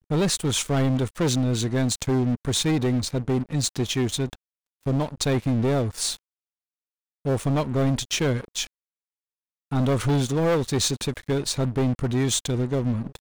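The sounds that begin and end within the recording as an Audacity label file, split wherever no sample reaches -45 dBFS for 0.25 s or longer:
4.830000	6.170000	sound
7.250000	8.670000	sound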